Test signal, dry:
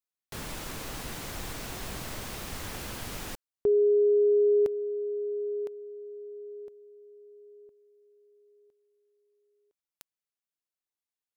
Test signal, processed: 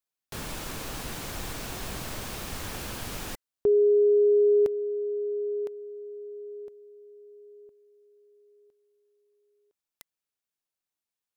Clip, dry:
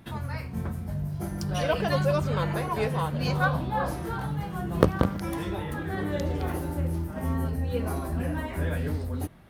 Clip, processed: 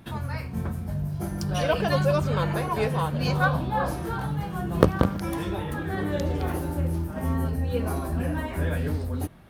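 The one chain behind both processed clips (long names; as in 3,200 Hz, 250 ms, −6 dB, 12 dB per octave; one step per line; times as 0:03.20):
notch filter 2,000 Hz, Q 26
level +2 dB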